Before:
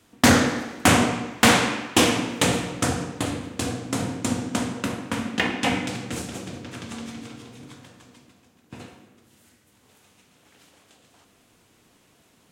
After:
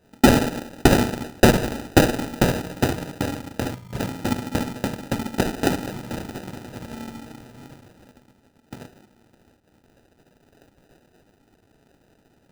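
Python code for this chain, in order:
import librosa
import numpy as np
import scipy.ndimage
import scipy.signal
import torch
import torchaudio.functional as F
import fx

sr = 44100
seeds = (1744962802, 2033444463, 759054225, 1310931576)

y = fx.spec_erase(x, sr, start_s=3.75, length_s=0.24, low_hz=210.0, high_hz=1600.0)
y = fx.sample_hold(y, sr, seeds[0], rate_hz=1100.0, jitter_pct=0)
y = fx.transient(y, sr, attack_db=4, sustain_db=-5)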